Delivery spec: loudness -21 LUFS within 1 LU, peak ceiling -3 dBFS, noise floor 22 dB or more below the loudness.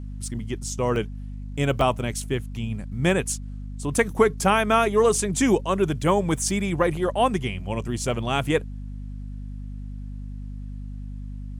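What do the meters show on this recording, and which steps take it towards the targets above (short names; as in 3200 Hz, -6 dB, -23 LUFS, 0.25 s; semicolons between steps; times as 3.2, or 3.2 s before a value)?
dropouts 3; longest dropout 1.2 ms; hum 50 Hz; harmonics up to 250 Hz; hum level -32 dBFS; loudness -24.0 LUFS; peak -4.5 dBFS; loudness target -21.0 LUFS
-> interpolate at 0.96/1.81/5.15, 1.2 ms; de-hum 50 Hz, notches 5; gain +3 dB; limiter -3 dBFS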